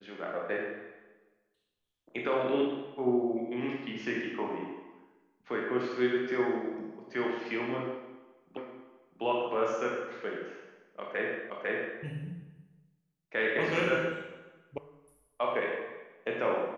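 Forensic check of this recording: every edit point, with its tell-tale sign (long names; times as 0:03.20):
0:08.57: the same again, the last 0.65 s
0:11.50: the same again, the last 0.5 s
0:14.78: cut off before it has died away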